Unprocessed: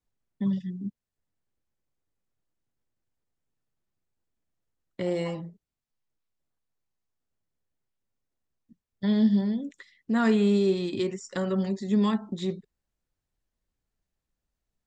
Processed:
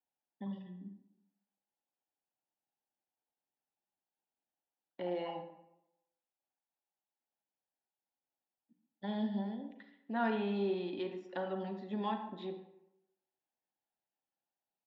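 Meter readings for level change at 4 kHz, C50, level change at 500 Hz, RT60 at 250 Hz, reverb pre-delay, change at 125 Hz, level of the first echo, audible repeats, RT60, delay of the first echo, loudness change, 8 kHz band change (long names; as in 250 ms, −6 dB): −10.5 dB, 8.5 dB, −9.5 dB, 0.80 s, 35 ms, −15.0 dB, −18.5 dB, 1, 0.85 s, 138 ms, −12.0 dB, can't be measured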